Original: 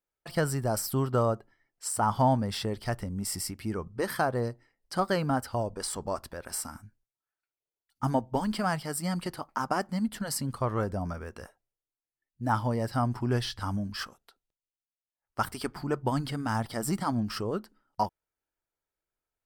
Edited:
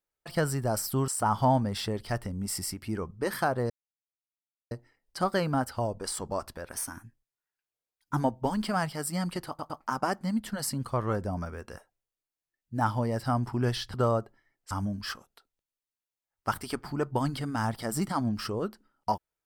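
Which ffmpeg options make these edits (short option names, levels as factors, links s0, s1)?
-filter_complex "[0:a]asplit=9[s0][s1][s2][s3][s4][s5][s6][s7][s8];[s0]atrim=end=1.082[s9];[s1]atrim=start=1.848:end=4.47,asetpts=PTS-STARTPTS,afade=t=out:st=2.618:d=0.004:c=hsin,apad=pad_dur=1.01[s10];[s2]atrim=start=4.47:end=6.514,asetpts=PTS-STARTPTS,afade=t=in:d=0.004:c=hsin[s11];[s3]atrim=start=6.51:end=8.07,asetpts=PTS-STARTPTS,asetrate=48510,aresample=44100[s12];[s4]atrim=start=8.066:end=9.492[s13];[s5]atrim=start=9.378:end=9.492[s14];[s6]atrim=start=9.378:end=13.622[s15];[s7]atrim=start=1.078:end=1.852[s16];[s8]atrim=start=13.618[s17];[s10][s11]concat=n=2:v=0:a=1[s18];[s9][s18]acrossfade=d=0.004:c1=hsin:c2=hsin[s19];[s19][s12]acrossfade=d=0.004:c1=hsin:c2=hsin[s20];[s20][s13]acrossfade=d=0.004:c1=hsin:c2=hsin[s21];[s21][s14]acrossfade=d=0.004:c1=hsin:c2=hsin[s22];[s22][s15]acrossfade=d=0.004:c1=hsin:c2=hsin[s23];[s23][s16]acrossfade=d=0.004:c1=hsin:c2=hsin[s24];[s24][s17]acrossfade=d=0.004:c1=hsin:c2=hsin"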